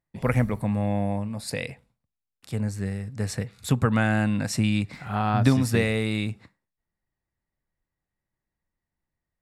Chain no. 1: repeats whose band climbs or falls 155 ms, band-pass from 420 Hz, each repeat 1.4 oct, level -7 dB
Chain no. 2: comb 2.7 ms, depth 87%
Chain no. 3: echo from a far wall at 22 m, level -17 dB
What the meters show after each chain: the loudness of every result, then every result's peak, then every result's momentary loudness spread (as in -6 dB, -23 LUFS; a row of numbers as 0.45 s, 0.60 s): -25.5 LUFS, -25.5 LUFS, -25.5 LUFS; -7.0 dBFS, -7.5 dBFS, -7.0 dBFS; 11 LU, 11 LU, 10 LU